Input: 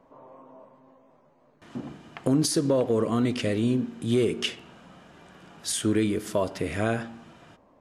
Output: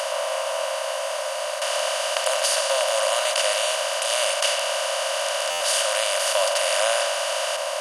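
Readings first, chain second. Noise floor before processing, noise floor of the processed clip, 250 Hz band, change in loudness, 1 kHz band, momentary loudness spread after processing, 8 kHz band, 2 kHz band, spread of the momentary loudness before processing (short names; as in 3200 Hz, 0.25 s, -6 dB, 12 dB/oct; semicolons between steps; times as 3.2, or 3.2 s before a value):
-61 dBFS, -28 dBFS, under -40 dB, +4.0 dB, +13.0 dB, 6 LU, +12.0 dB, +13.0 dB, 16 LU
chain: per-bin compression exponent 0.2; brick-wall FIR high-pass 530 Hz; stuck buffer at 5.5, samples 512, times 8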